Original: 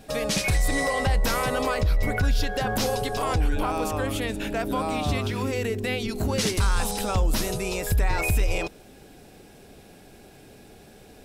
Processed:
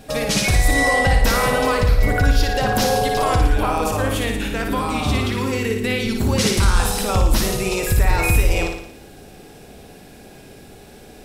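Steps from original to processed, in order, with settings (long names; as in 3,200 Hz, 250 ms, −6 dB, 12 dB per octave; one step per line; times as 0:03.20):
0:04.29–0:06.33: parametric band 660 Hz −11 dB 0.27 octaves
flutter between parallel walls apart 9.8 metres, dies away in 0.7 s
level +5 dB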